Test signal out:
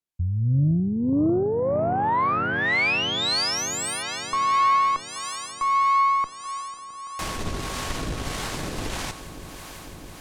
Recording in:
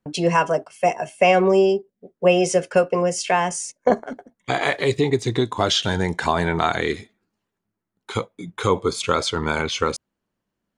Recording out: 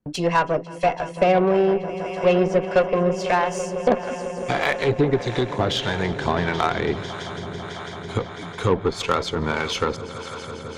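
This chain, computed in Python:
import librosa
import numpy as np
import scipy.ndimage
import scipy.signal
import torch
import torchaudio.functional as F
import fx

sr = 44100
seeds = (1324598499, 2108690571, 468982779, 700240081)

y = fx.low_shelf(x, sr, hz=330.0, db=3.0)
y = fx.echo_swell(y, sr, ms=166, loudest=5, wet_db=-18.0)
y = fx.harmonic_tremolo(y, sr, hz=1.6, depth_pct=50, crossover_hz=570.0)
y = fx.env_lowpass_down(y, sr, base_hz=2400.0, full_db=-15.0)
y = fx.cheby_harmonics(y, sr, harmonics=(8,), levels_db=(-25,), full_scale_db=-5.5)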